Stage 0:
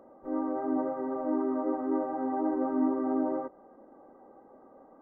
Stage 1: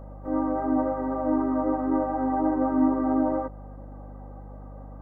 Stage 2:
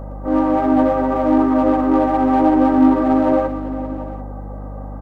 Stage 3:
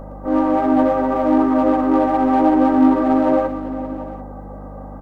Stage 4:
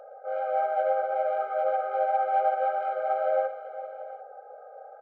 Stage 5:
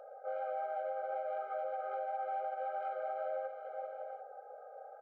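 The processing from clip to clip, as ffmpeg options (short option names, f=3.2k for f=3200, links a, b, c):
-af "equalizer=f=380:w=7.6:g=-13.5,aeval=exprs='val(0)+0.00447*(sin(2*PI*50*n/s)+sin(2*PI*2*50*n/s)/2+sin(2*PI*3*50*n/s)/3+sin(2*PI*4*50*n/s)/4+sin(2*PI*5*50*n/s)/5)':c=same,volume=6.5dB"
-filter_complex "[0:a]asplit=2[a][b];[b]volume=29dB,asoftclip=hard,volume=-29dB,volume=-5.5dB[c];[a][c]amix=inputs=2:normalize=0,aecho=1:1:116|389|566|739:0.299|0.178|0.1|0.158,volume=7.5dB"
-af "equalizer=f=73:w=1.2:g=-10.5"
-filter_complex "[0:a]highpass=f=260:w=0.5412,highpass=f=260:w=1.3066,acrossover=split=490 2800:gain=0.224 1 0.0794[a][b][c];[a][b][c]amix=inputs=3:normalize=0,afftfilt=real='re*eq(mod(floor(b*sr/1024/410),2),1)':imag='im*eq(mod(floor(b*sr/1024/410),2),1)':win_size=1024:overlap=0.75,volume=-4dB"
-af "alimiter=level_in=1.5dB:limit=-24dB:level=0:latency=1:release=215,volume=-1.5dB,volume=-5dB"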